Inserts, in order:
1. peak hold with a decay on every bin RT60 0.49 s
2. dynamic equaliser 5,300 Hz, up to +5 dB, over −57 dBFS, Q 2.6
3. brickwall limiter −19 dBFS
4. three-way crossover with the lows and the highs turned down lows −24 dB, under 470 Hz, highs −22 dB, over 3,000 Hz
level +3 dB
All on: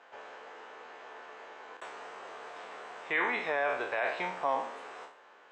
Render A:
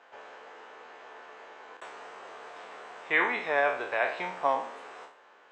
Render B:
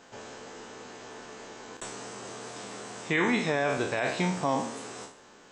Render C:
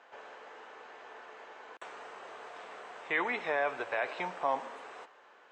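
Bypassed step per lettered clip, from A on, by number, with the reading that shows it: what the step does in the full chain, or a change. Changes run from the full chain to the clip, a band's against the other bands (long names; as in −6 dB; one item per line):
3, change in crest factor +2.5 dB
4, 125 Hz band +18.0 dB
1, change in integrated loudness −1.5 LU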